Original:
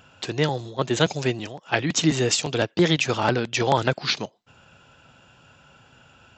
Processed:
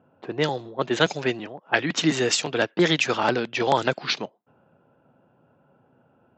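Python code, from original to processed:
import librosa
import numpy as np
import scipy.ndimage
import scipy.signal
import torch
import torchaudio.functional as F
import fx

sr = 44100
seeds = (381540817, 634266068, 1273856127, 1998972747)

y = scipy.signal.sosfilt(scipy.signal.butter(2, 190.0, 'highpass', fs=sr, output='sos'), x)
y = fx.env_lowpass(y, sr, base_hz=600.0, full_db=-16.5)
y = fx.dynamic_eq(y, sr, hz=1600.0, q=1.5, threshold_db=-40.0, ratio=4.0, max_db=4, at=(0.87, 3.23))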